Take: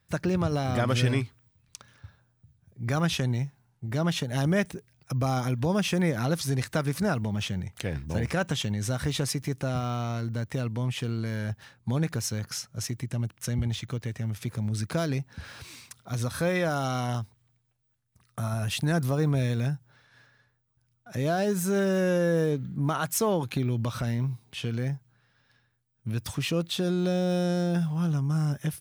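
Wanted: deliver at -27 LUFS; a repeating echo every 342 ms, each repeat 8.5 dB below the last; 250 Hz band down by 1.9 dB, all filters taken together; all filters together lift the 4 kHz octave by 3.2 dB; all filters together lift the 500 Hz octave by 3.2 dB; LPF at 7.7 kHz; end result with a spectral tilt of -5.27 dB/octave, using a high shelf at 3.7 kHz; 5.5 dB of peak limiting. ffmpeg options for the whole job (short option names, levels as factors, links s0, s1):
-af "lowpass=7700,equalizer=f=250:t=o:g=-4.5,equalizer=f=500:t=o:g=5,highshelf=f=3700:g=-7.5,equalizer=f=4000:t=o:g=9,alimiter=limit=0.119:level=0:latency=1,aecho=1:1:342|684|1026|1368:0.376|0.143|0.0543|0.0206,volume=1.26"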